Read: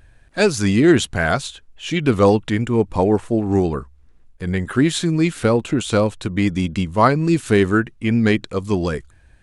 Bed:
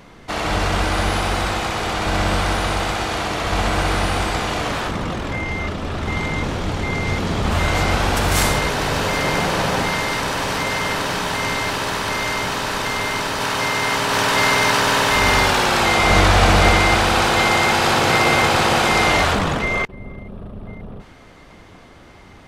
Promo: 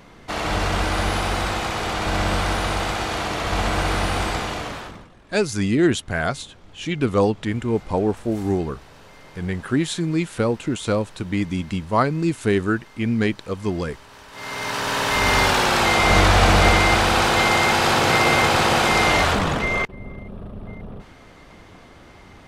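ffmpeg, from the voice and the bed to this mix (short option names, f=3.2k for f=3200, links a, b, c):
-filter_complex "[0:a]adelay=4950,volume=-4.5dB[a];[1:a]volume=22.5dB,afade=t=out:st=4.3:d=0.79:silence=0.0630957,afade=t=in:st=14.31:d=1.13:silence=0.0562341[b];[a][b]amix=inputs=2:normalize=0"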